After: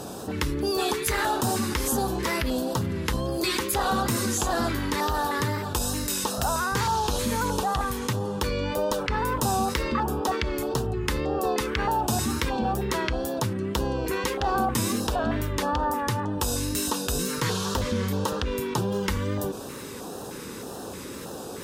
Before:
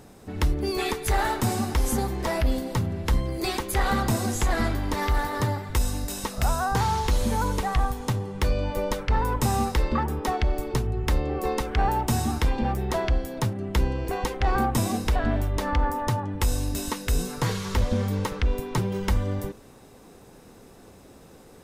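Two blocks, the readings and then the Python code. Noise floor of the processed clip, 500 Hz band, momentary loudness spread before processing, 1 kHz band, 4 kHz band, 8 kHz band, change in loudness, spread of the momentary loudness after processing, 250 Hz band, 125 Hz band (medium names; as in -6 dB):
-37 dBFS, +2.0 dB, 4 LU, +1.0 dB, +4.0 dB, +4.5 dB, 0.0 dB, 5 LU, +1.0 dB, -4.0 dB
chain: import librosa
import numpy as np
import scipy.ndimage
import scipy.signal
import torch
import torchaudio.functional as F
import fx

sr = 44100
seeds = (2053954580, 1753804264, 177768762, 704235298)

y = scipy.signal.sosfilt(scipy.signal.butter(2, 61.0, 'highpass', fs=sr, output='sos'), x)
y = fx.low_shelf(y, sr, hz=210.0, db=-9.0)
y = fx.filter_lfo_notch(y, sr, shape='square', hz=1.6, low_hz=720.0, high_hz=2100.0, q=1.4)
y = fx.wow_flutter(y, sr, seeds[0], rate_hz=2.1, depth_cents=49.0)
y = fx.env_flatten(y, sr, amount_pct=50)
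y = y * librosa.db_to_amplitude(1.5)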